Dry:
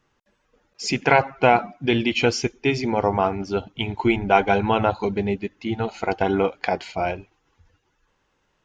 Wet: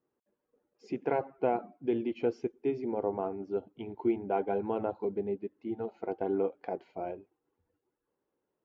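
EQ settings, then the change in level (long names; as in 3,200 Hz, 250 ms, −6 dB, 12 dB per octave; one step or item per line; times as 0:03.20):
resonant band-pass 380 Hz, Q 1.5
−7.0 dB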